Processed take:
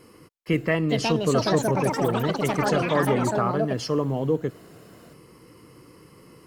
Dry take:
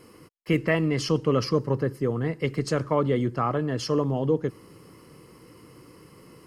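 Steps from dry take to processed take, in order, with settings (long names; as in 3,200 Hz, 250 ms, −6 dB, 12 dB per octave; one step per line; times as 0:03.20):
delay with pitch and tempo change per echo 565 ms, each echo +6 semitones, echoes 3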